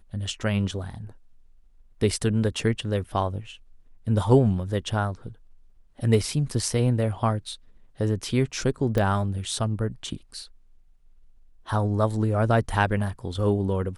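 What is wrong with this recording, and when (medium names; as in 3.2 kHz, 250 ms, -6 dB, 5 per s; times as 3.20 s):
8.98 s: pop -13 dBFS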